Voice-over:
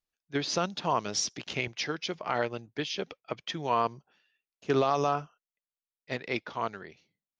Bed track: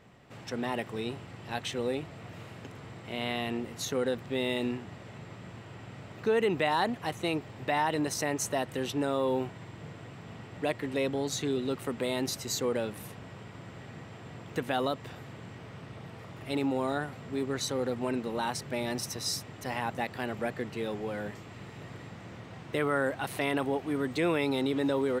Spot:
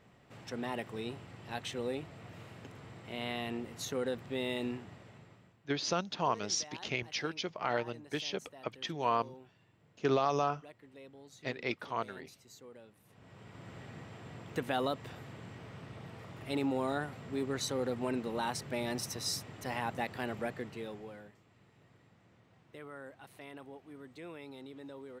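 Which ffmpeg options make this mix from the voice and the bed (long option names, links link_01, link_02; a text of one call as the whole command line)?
ffmpeg -i stem1.wav -i stem2.wav -filter_complex "[0:a]adelay=5350,volume=-3.5dB[link_01];[1:a]volume=15dB,afade=type=out:start_time=4.77:duration=0.8:silence=0.125893,afade=type=in:start_time=13.05:duration=0.68:silence=0.1,afade=type=out:start_time=20.29:duration=1.03:silence=0.149624[link_02];[link_01][link_02]amix=inputs=2:normalize=0" out.wav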